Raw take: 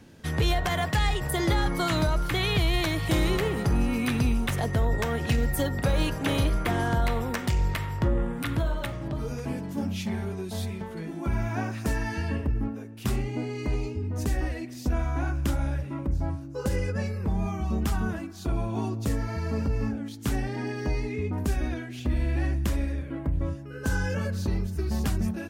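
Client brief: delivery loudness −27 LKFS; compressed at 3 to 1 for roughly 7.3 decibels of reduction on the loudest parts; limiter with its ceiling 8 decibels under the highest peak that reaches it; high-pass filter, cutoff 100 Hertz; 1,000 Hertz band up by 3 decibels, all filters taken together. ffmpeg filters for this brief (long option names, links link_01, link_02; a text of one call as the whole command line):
ffmpeg -i in.wav -af "highpass=100,equalizer=frequency=1000:width_type=o:gain=4,acompressor=threshold=-31dB:ratio=3,volume=9dB,alimiter=limit=-17dB:level=0:latency=1" out.wav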